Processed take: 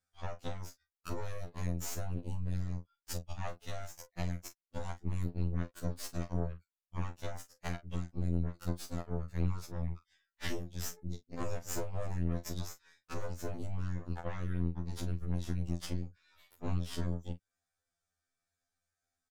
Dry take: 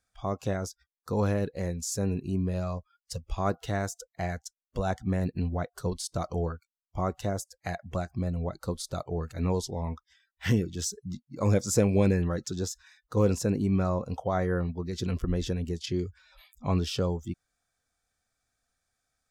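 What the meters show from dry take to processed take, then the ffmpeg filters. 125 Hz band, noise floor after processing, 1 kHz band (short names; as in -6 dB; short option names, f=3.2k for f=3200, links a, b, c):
-7.0 dB, under -85 dBFS, -11.5 dB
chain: -filter_complex "[0:a]acompressor=threshold=-40dB:ratio=4,aeval=exprs='0.0531*(cos(1*acos(clip(val(0)/0.0531,-1,1)))-cos(1*PI/2))+0.0168*(cos(4*acos(clip(val(0)/0.0531,-1,1)))-cos(4*PI/2))+0.00531*(cos(7*acos(clip(val(0)/0.0531,-1,1)))-cos(7*PI/2))':c=same,asplit=2[a][b];[b]adelay=35,volume=-11dB[c];[a][c]amix=inputs=2:normalize=0,afftfilt=real='re*2*eq(mod(b,4),0)':imag='im*2*eq(mod(b,4),0)':win_size=2048:overlap=0.75,volume=4dB"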